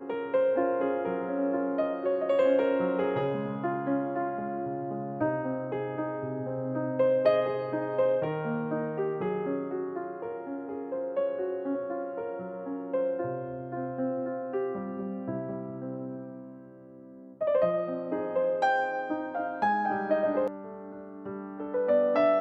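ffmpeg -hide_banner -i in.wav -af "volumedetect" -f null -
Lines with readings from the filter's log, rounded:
mean_volume: -29.7 dB
max_volume: -11.8 dB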